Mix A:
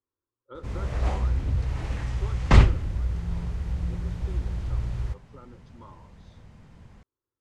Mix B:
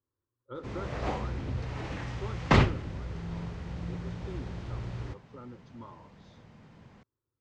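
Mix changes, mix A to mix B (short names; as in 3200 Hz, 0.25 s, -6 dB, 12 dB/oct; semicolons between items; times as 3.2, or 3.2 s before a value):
background: add three-band isolator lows -17 dB, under 220 Hz, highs -24 dB, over 7100 Hz; master: add bell 120 Hz +10 dB 1.6 oct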